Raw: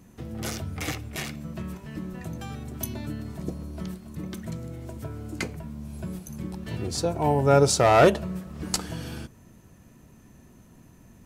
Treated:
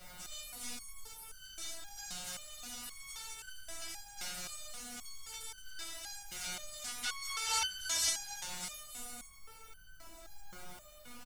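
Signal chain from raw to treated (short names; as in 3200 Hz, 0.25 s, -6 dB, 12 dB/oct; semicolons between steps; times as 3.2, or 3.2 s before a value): spectral contrast lowered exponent 0.45; BPF 140–6600 Hz; spectral gate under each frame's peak -20 dB weak; added noise pink -57 dBFS; comb 1.4 ms, depth 58%; on a send: frequency-shifting echo 81 ms, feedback 59%, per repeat +110 Hz, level -11 dB; on the sum: spring tank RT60 2 s, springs 33 ms, chirp 30 ms, DRR 7.5 dB; in parallel at +0.5 dB: compressor, threshold -40 dBFS, peak gain reduction 16.5 dB; on the sum: bell 1200 Hz +4 dB 0.51 oct; stepped resonator 3.8 Hz 180–1500 Hz; gain +9.5 dB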